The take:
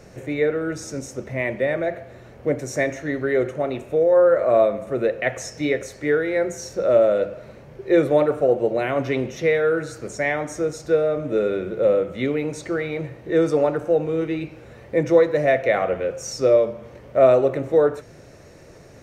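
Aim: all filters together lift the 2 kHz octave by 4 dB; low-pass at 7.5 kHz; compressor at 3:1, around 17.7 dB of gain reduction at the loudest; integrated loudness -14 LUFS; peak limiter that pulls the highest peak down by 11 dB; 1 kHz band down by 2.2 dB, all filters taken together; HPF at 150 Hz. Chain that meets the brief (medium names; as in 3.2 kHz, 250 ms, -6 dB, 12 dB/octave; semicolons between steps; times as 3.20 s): high-pass 150 Hz; low-pass 7.5 kHz; peaking EQ 1 kHz -5.5 dB; peaking EQ 2 kHz +6 dB; compression 3:1, threshold -37 dBFS; trim +27 dB; peak limiter -5 dBFS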